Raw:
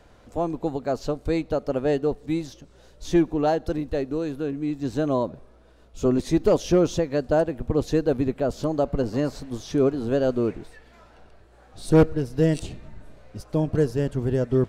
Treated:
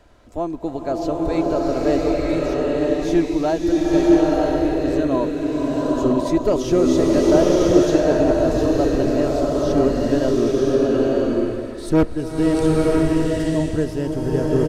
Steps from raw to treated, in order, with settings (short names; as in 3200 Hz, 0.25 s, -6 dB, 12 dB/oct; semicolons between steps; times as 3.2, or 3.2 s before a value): comb 3.1 ms, depth 34%; bloom reverb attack 0.98 s, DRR -5 dB